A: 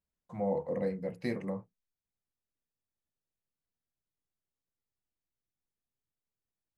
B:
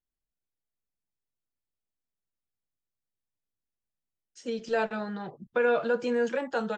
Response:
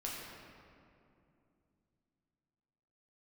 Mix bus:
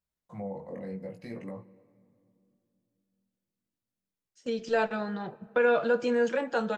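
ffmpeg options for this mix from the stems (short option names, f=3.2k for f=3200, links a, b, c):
-filter_complex "[0:a]highpass=49,alimiter=level_in=6dB:limit=-24dB:level=0:latency=1:release=58,volume=-6dB,flanger=delay=17:depth=4.9:speed=0.68,volume=2dB,asplit=2[a][b];[b]volume=-17dB[c];[1:a]agate=range=-11dB:threshold=-44dB:ratio=16:detection=peak,volume=0.5dB,asplit=2[d][e];[e]volume=-19.5dB[f];[2:a]atrim=start_sample=2205[g];[c][f]amix=inputs=2:normalize=0[h];[h][g]afir=irnorm=-1:irlink=0[i];[a][d][i]amix=inputs=3:normalize=0"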